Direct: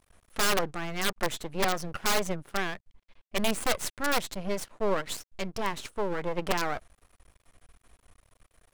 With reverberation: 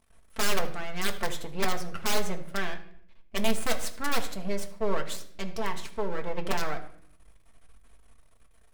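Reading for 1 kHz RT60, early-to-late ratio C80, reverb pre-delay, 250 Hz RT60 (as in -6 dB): 0.55 s, 15.5 dB, 4 ms, 0.95 s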